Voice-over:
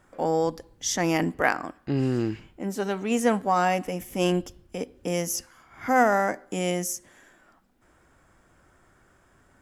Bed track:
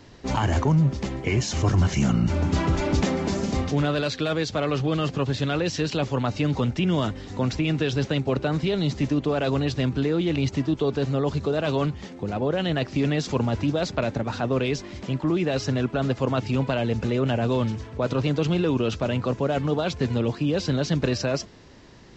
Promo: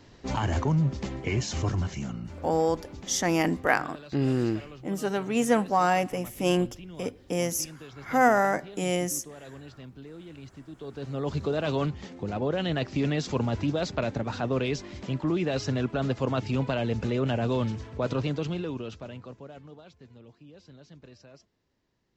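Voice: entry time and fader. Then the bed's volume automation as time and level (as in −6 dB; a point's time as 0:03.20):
2.25 s, −0.5 dB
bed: 0:01.57 −4.5 dB
0:02.52 −21 dB
0:10.67 −21 dB
0:11.35 −3.5 dB
0:18.13 −3.5 dB
0:19.99 −27 dB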